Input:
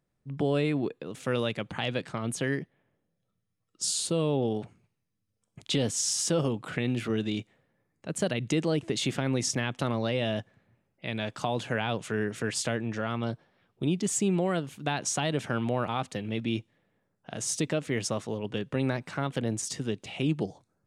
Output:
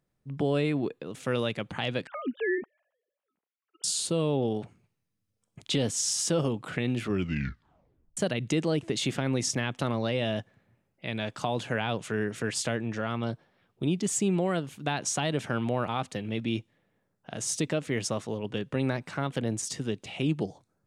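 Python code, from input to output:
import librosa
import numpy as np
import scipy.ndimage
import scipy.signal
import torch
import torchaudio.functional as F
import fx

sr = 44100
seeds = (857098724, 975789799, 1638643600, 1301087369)

y = fx.sine_speech(x, sr, at=(2.07, 3.84))
y = fx.edit(y, sr, fx.tape_stop(start_s=7.03, length_s=1.14), tone=tone)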